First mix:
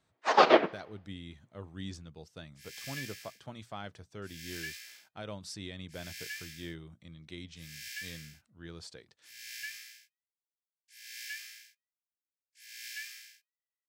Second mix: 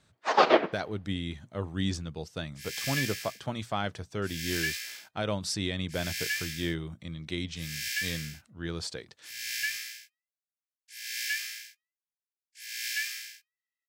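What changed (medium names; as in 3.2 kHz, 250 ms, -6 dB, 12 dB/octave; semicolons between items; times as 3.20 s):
speech +11.0 dB; second sound +10.0 dB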